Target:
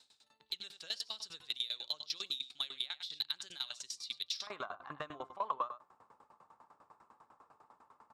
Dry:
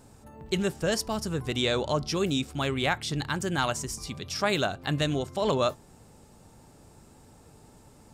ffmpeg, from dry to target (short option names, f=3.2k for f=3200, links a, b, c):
-af "alimiter=limit=-18.5dB:level=0:latency=1:release=394,asetnsamples=n=441:p=0,asendcmd='4.47 bandpass f 1100',bandpass=f=3.9k:t=q:w=6.2:csg=0,aecho=1:1:91:0.224,acompressor=threshold=-44dB:ratio=3,asoftclip=type=tanh:threshold=-34dB,aeval=exprs='val(0)*pow(10,-21*if(lt(mod(10*n/s,1),2*abs(10)/1000),1-mod(10*n/s,1)/(2*abs(10)/1000),(mod(10*n/s,1)-2*abs(10)/1000)/(1-2*abs(10)/1000))/20)':c=same,volume=14.5dB"